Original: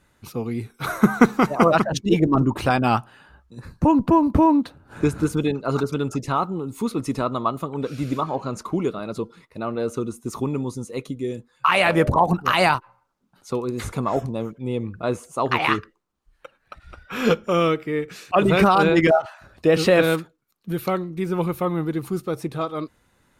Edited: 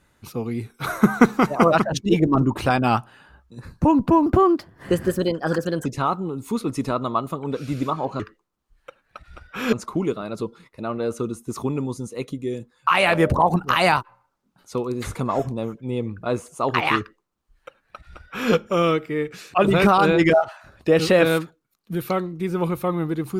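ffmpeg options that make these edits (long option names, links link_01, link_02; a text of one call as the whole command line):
ffmpeg -i in.wav -filter_complex "[0:a]asplit=5[link_01][link_02][link_03][link_04][link_05];[link_01]atrim=end=4.264[link_06];[link_02]atrim=start=4.26:end=6.16,asetpts=PTS-STARTPTS,asetrate=52479,aresample=44100[link_07];[link_03]atrim=start=6.156:end=8.502[link_08];[link_04]atrim=start=15.758:end=17.292[link_09];[link_05]atrim=start=8.498[link_10];[link_06][link_07]acrossfade=duration=0.004:curve1=hsin:curve2=hsin[link_11];[link_11][link_08]acrossfade=duration=0.004:curve1=hsin:curve2=hsin[link_12];[link_12][link_09]acrossfade=duration=0.004:curve1=hsin:curve2=hsin[link_13];[link_13][link_10]acrossfade=duration=0.004:curve1=hsin:curve2=hsin" out.wav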